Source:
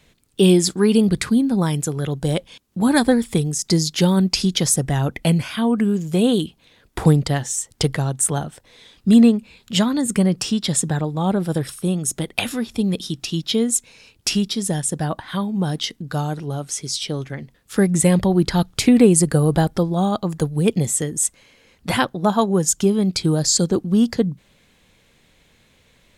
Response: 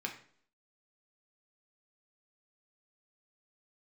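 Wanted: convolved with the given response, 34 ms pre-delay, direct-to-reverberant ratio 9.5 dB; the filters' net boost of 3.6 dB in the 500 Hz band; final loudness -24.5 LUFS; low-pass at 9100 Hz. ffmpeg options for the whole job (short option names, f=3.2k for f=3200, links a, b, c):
-filter_complex "[0:a]lowpass=9.1k,equalizer=f=500:t=o:g=4.5,asplit=2[a][b];[1:a]atrim=start_sample=2205,adelay=34[c];[b][c]afir=irnorm=-1:irlink=0,volume=-11.5dB[d];[a][d]amix=inputs=2:normalize=0,volume=-6.5dB"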